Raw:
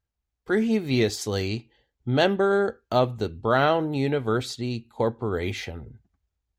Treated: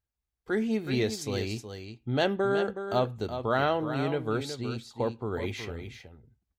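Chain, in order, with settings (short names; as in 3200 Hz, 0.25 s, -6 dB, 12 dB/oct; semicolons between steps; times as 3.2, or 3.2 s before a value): echo 0.37 s -9 dB; gain -5.5 dB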